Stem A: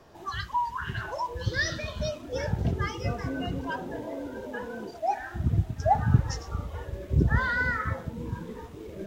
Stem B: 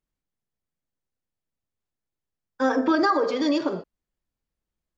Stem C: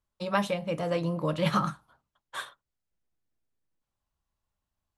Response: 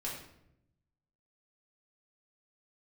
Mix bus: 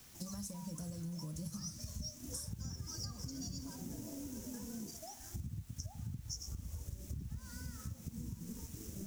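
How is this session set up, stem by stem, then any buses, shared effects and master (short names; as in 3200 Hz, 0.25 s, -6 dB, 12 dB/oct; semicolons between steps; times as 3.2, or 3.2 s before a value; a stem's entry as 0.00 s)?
-3.0 dB, 0.00 s, bus A, no send, dry
-7.5 dB, 0.00 s, no bus, no send, HPF 1200 Hz 12 dB/oct
-5.5 dB, 0.00 s, bus A, no send, AGC gain up to 9.5 dB
bus A: 0.0 dB, sample leveller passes 1; compressor 10:1, threshold -32 dBFS, peak gain reduction 17.5 dB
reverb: off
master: EQ curve 240 Hz 0 dB, 410 Hz -16 dB, 1100 Hz -19 dB, 2400 Hz -28 dB, 3600 Hz -21 dB, 5600 Hz +13 dB; requantised 10-bit, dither triangular; compressor 4:1, threshold -41 dBFS, peak gain reduction 10 dB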